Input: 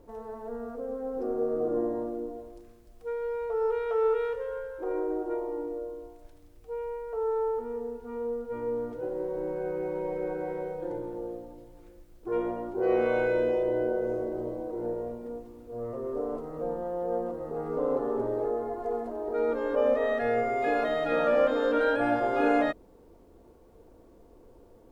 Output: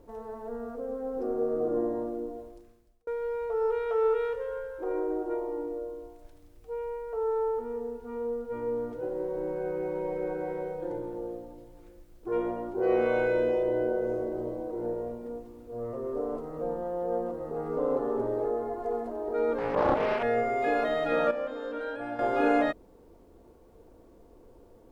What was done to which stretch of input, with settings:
0:02.43–0:03.07: fade out
0:19.58–0:20.23: highs frequency-modulated by the lows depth 0.69 ms
0:21.31–0:22.19: clip gain −10 dB

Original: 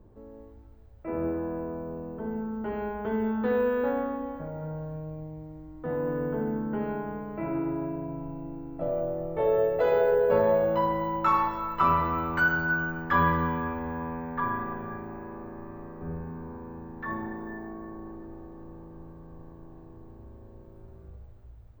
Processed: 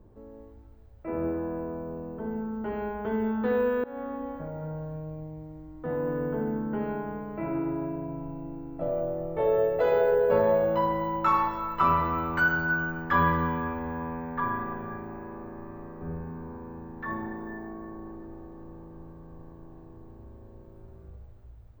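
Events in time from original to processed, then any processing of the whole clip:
0:03.84–0:04.41: fade in equal-power, from −23 dB

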